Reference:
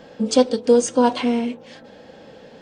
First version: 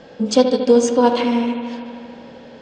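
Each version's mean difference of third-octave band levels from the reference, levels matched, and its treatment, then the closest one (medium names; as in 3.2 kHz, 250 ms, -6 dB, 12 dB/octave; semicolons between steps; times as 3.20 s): 3.0 dB: low-pass 7.3 kHz 24 dB/octave; bucket-brigade echo 76 ms, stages 2048, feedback 81%, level -9.5 dB; trim +1.5 dB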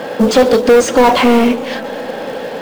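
8.5 dB: overdrive pedal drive 29 dB, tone 1.4 kHz, clips at -3.5 dBFS; in parallel at -7.5 dB: companded quantiser 4-bit; on the sum: modulated delay 128 ms, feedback 78%, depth 204 cents, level -21.5 dB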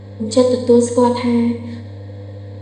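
5.0 dB: rippled EQ curve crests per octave 1, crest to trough 14 dB; mains buzz 100 Hz, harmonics 7, -32 dBFS -9 dB/octave; Schroeder reverb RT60 1 s, combs from 30 ms, DRR 5 dB; trim -3.5 dB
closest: first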